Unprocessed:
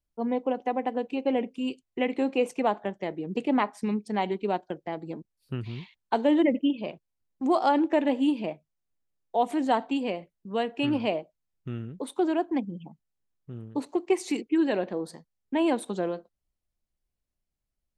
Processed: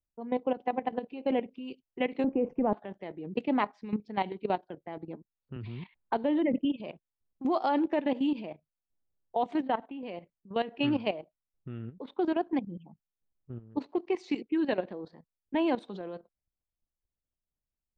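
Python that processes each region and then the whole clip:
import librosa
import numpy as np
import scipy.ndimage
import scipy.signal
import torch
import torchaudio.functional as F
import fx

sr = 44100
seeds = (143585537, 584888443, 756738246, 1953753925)

y = fx.chain(x, sr, fx.moving_average(points=11),
    fx.tilt_eq(slope=-4.5), at=(2.24, 2.73))
y = fx.chain(y, sr, fx.lowpass(hz=3200.0, slope=6),
    fx.low_shelf(hz=72.0, db=7.0),
    fx.band_squash(depth_pct=40), at=(5.56, 6.65))
y = fx.chain(y, sr, fx.lowpass(hz=3200.0, slope=24),
    fx.level_steps(step_db=12), at=(9.62, 10.03))
y = fx.env_lowpass(y, sr, base_hz=1000.0, full_db=-22.5)
y = scipy.signal.sosfilt(scipy.signal.butter(4, 5100.0, 'lowpass', fs=sr, output='sos'), y)
y = fx.level_steps(y, sr, step_db=13)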